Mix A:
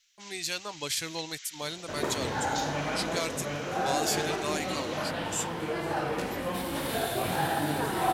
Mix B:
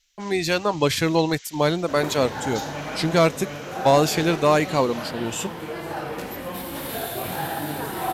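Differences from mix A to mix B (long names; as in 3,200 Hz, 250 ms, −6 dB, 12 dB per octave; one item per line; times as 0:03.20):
speech: remove first-order pre-emphasis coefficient 0.9
master: add parametric band 13,000 Hz +10.5 dB 0.29 octaves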